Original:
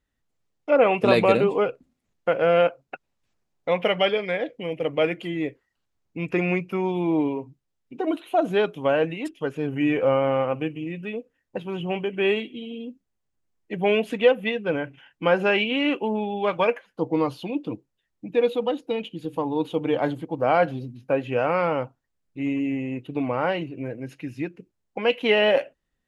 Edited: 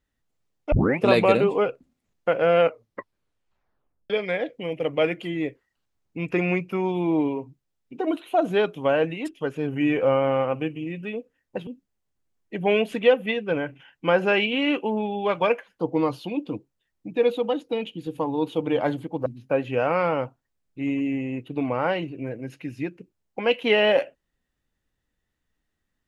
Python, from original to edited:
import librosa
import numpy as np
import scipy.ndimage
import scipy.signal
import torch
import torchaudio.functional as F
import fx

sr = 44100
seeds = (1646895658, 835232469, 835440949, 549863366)

y = fx.edit(x, sr, fx.tape_start(start_s=0.72, length_s=0.28),
    fx.tape_stop(start_s=2.6, length_s=1.5),
    fx.cut(start_s=11.67, length_s=1.18),
    fx.cut(start_s=20.44, length_s=0.41), tone=tone)